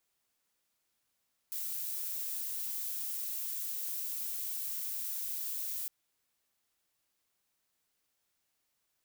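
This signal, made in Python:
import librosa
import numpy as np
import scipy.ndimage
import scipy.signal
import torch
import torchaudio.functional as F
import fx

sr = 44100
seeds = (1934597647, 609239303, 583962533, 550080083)

y = fx.noise_colour(sr, seeds[0], length_s=4.36, colour='violet', level_db=-37.5)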